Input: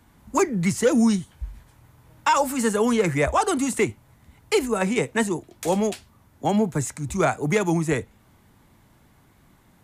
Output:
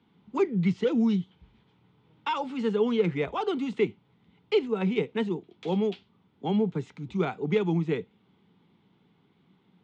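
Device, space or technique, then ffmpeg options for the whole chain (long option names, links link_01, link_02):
kitchen radio: -af "highpass=160,equalizer=frequency=180:width_type=q:width=4:gain=10,equalizer=frequency=420:width_type=q:width=4:gain=7,equalizer=frequency=610:width_type=q:width=4:gain=-10,equalizer=frequency=1100:width_type=q:width=4:gain=-4,equalizer=frequency=1700:width_type=q:width=4:gain=-9,equalizer=frequency=3300:width_type=q:width=4:gain=6,lowpass=frequency=3800:width=0.5412,lowpass=frequency=3800:width=1.3066,volume=-7dB"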